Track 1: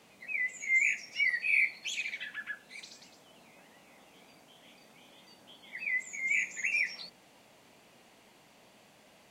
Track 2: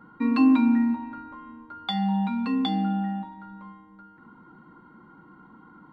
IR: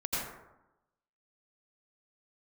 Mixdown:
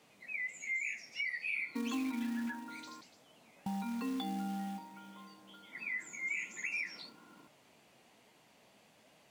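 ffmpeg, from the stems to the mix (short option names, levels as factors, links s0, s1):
-filter_complex "[0:a]flanger=delay=6.5:depth=8.7:regen=67:speed=1.2:shape=sinusoidal,volume=0.944[s0];[1:a]highpass=170,equalizer=f=430:t=o:w=0.35:g=7.5,acrusher=bits=4:mode=log:mix=0:aa=0.000001,adelay=1550,volume=0.355,asplit=3[s1][s2][s3];[s1]atrim=end=3.01,asetpts=PTS-STARTPTS,afade=t=out:st=3.006:d=0.004:c=hsin[s4];[s2]atrim=start=3.01:end=3.66,asetpts=PTS-STARTPTS,volume=0[s5];[s3]atrim=start=3.66,asetpts=PTS-STARTPTS,afade=t=in:d=0.004:c=hsin[s6];[s4][s5][s6]concat=n=3:v=0:a=1[s7];[s0][s7]amix=inputs=2:normalize=0,highpass=46,acompressor=threshold=0.02:ratio=6"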